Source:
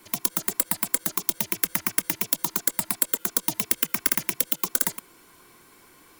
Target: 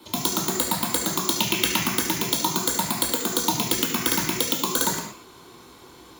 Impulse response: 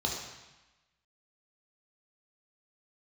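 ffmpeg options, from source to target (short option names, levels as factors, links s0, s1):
-filter_complex "[0:a]asettb=1/sr,asplit=3[s0][s1][s2];[s0]atrim=end=1.364[s3];[s1]atrim=start=1.36:end=1.82,asetpts=PTS-STARTPTS,afade=t=in:d=0.004:c=qsin,afade=t=out:st=0.456:d=0.004:c=qsin,equalizer=f=2800:t=o:w=0.6:g=10.5[s4];[s2]atrim=start=1.816[s5];[s3][s4]acrossfade=d=0.004:c1=hsin:c2=qsin[s6];[s6][s5]acrossfade=d=0.004:c1=qsin:c2=hsin[s7];[1:a]atrim=start_sample=2205,afade=t=out:st=0.29:d=0.01,atrim=end_sample=13230[s8];[s7][s8]afir=irnorm=-1:irlink=0"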